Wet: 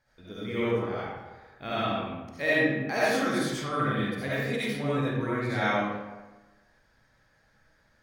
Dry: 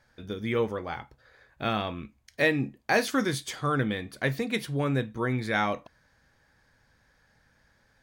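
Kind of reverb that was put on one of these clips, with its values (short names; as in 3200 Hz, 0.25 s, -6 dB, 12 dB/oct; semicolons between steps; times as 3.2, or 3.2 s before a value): digital reverb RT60 1.2 s, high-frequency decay 0.6×, pre-delay 30 ms, DRR -9.5 dB; gain -9.5 dB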